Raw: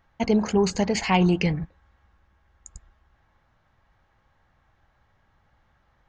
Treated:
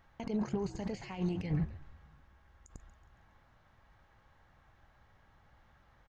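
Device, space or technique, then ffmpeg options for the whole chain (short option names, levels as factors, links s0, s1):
de-esser from a sidechain: -filter_complex "[0:a]asplit=2[s0][s1];[s1]highpass=f=6500:p=1,apad=whole_len=268151[s2];[s0][s2]sidechaincompress=threshold=0.00178:ratio=20:attack=1.9:release=31,asplit=5[s3][s4][s5][s6][s7];[s4]adelay=138,afreqshift=-76,volume=0.168[s8];[s5]adelay=276,afreqshift=-152,volume=0.0822[s9];[s6]adelay=414,afreqshift=-228,volume=0.0403[s10];[s7]adelay=552,afreqshift=-304,volume=0.0197[s11];[s3][s8][s9][s10][s11]amix=inputs=5:normalize=0"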